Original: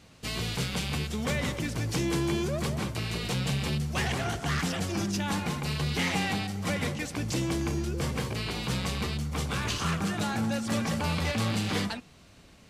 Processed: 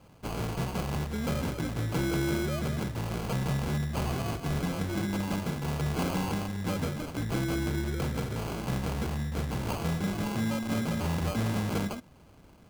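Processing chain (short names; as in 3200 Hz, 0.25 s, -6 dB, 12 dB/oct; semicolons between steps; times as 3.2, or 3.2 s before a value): bell 1200 Hz -11.5 dB 0.99 oct; sample-and-hold 24×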